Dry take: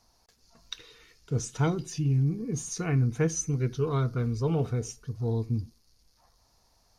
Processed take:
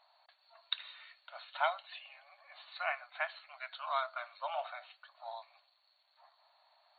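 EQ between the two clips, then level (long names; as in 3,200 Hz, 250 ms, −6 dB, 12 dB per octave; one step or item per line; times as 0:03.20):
linear-phase brick-wall band-pass 560–4,500 Hz
+3.0 dB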